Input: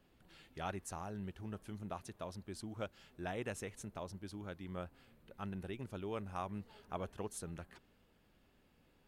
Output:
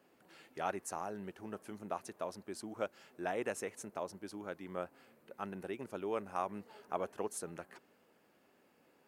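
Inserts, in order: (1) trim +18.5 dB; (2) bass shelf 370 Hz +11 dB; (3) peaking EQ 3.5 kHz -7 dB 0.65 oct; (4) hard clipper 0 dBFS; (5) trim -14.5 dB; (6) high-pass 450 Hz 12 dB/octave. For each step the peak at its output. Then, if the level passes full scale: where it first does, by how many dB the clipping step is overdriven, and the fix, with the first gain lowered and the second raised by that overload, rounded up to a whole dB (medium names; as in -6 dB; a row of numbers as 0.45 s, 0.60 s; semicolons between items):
-8.0 dBFS, -4.0 dBFS, -4.0 dBFS, -4.0 dBFS, -18.5 dBFS, -21.5 dBFS; nothing clips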